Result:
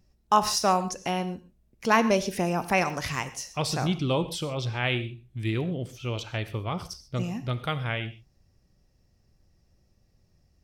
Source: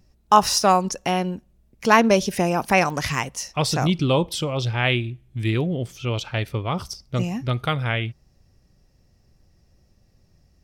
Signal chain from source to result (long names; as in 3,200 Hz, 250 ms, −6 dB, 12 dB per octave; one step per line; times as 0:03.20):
reverb whose tail is shaped and stops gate 160 ms flat, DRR 12 dB
level −6 dB